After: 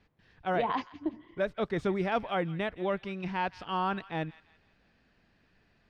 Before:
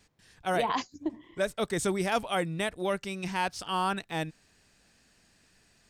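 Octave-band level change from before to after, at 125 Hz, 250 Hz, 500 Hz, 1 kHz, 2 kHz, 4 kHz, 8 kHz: 0.0 dB, -0.5 dB, -1.0 dB, -1.5 dB, -3.0 dB, -7.0 dB, under -20 dB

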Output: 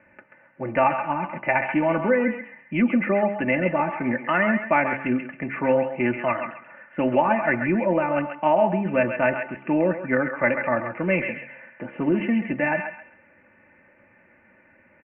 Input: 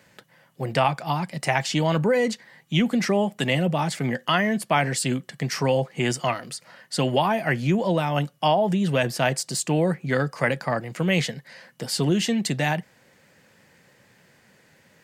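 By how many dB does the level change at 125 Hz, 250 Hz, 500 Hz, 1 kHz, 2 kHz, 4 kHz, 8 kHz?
-7.5 dB, +1.0 dB, +2.0 dB, +1.5 dB, +2.5 dB, under -15 dB, under -40 dB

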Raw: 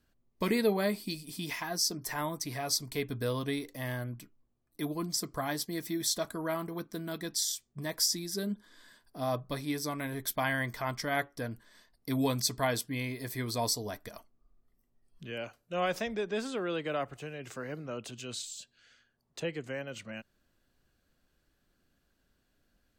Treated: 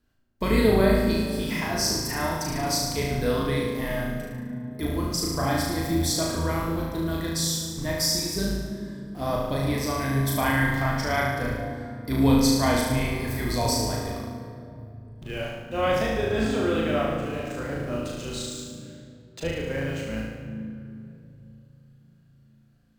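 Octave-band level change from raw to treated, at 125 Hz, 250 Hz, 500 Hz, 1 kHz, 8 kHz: +11.5 dB, +10.5 dB, +8.5 dB, +8.0 dB, +5.0 dB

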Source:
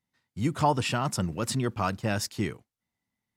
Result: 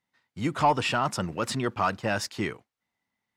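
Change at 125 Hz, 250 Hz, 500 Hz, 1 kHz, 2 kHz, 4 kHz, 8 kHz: -4.0 dB, -1.0 dB, +2.0 dB, +3.5 dB, +4.0 dB, +1.5 dB, -2.5 dB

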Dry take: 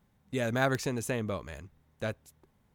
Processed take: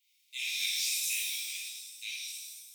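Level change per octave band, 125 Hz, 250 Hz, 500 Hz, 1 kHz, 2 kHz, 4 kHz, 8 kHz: under -40 dB, under -40 dB, under -40 dB, under -35 dB, -1.0 dB, +12.5 dB, +11.5 dB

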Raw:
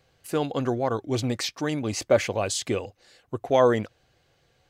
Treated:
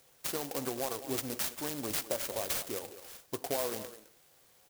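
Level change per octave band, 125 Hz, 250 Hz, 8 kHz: -17.5 dB, -12.5 dB, -3.0 dB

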